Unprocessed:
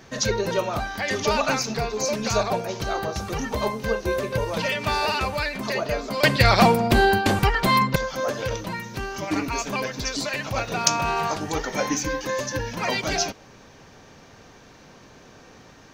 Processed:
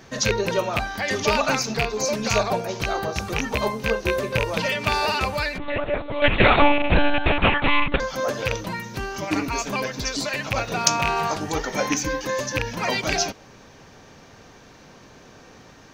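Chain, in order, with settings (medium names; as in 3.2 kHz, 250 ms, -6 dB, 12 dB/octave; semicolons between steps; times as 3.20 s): rattle on loud lows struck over -25 dBFS, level -10 dBFS; 5.58–8.00 s: monotone LPC vocoder at 8 kHz 290 Hz; trim +1 dB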